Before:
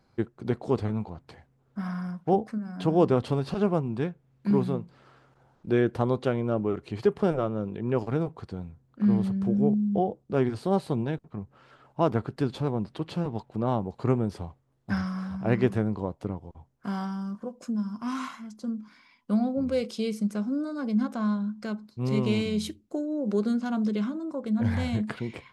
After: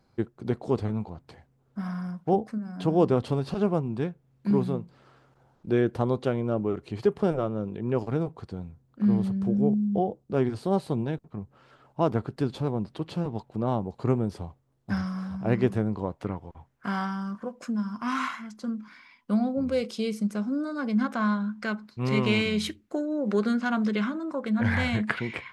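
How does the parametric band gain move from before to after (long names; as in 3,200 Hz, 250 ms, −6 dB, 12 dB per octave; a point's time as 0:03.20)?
parametric band 1,800 Hz 1.8 octaves
0:15.83 −2 dB
0:16.31 +10 dB
0:18.77 +10 dB
0:19.41 +2.5 dB
0:20.36 +2.5 dB
0:21.23 +12 dB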